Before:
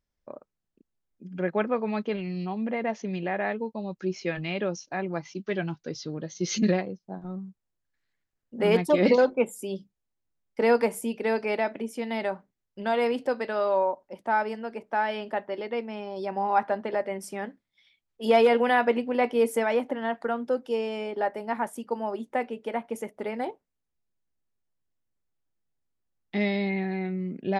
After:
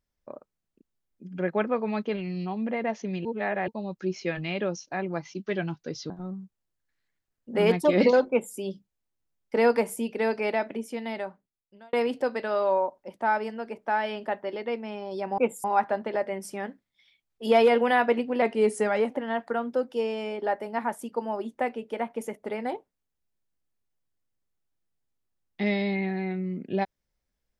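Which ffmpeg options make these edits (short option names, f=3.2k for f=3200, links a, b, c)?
-filter_complex "[0:a]asplit=9[a][b][c][d][e][f][g][h][i];[a]atrim=end=3.252[j];[b]atrim=start=3.248:end=3.682,asetpts=PTS-STARTPTS,areverse[k];[c]atrim=start=3.678:end=6.102[l];[d]atrim=start=7.148:end=12.98,asetpts=PTS-STARTPTS,afade=t=out:st=4.652:d=1.18[m];[e]atrim=start=12.98:end=16.432,asetpts=PTS-STARTPTS,afade=t=in:d=0.004:c=hsin[n];[f]atrim=start=9.348:end=9.612[o];[g]atrim=start=16.428:end=19.214[p];[h]atrim=start=19.21:end=19.84,asetpts=PTS-STARTPTS,asetrate=41013,aresample=44100,atrim=end_sample=29874,asetpts=PTS-STARTPTS[q];[i]atrim=start=19.836[r];[j][k]acrossfade=d=0.004:c1=hsin:c2=hsin[s];[s][l]acrossfade=d=0.004:c1=hsin:c2=hsin[t];[m][n]concat=n=2:v=0:a=1[u];[t][u]acrossfade=d=0.004:c1=hsin:c2=hsin[v];[v][o]acrossfade=d=0.004:c1=hsin:c2=hsin[w];[w][p]acrossfade=d=0.004:c1=hsin:c2=hsin[x];[x][q]acrossfade=d=0.004:c1=hsin:c2=hsin[y];[y][r]acrossfade=d=0.004:c1=hsin:c2=hsin"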